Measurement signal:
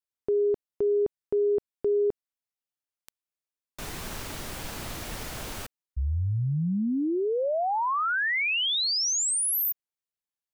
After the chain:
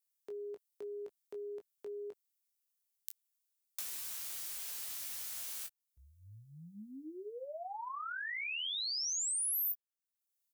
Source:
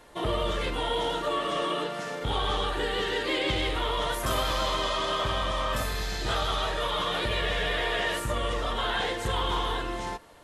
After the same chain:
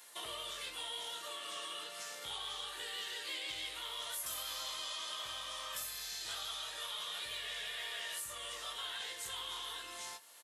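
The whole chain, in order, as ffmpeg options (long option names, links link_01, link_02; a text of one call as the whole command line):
ffmpeg -i in.wav -filter_complex "[0:a]aderivative,acrossover=split=130[link_01][link_02];[link_02]acompressor=threshold=-51dB:ratio=2.5:attack=23:release=720:knee=2.83:detection=peak[link_03];[link_01][link_03]amix=inputs=2:normalize=0,aecho=1:1:19|29:0.473|0.178,volume=6dB" out.wav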